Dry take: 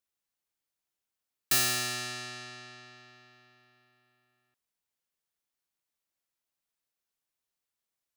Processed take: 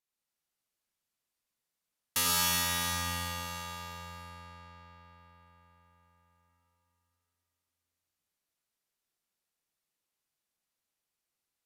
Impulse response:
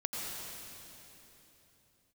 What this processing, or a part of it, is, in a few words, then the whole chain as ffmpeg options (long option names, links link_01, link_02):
slowed and reverbed: -filter_complex "[0:a]asetrate=30870,aresample=44100[link_01];[1:a]atrim=start_sample=2205[link_02];[link_01][link_02]afir=irnorm=-1:irlink=0,volume=-3.5dB"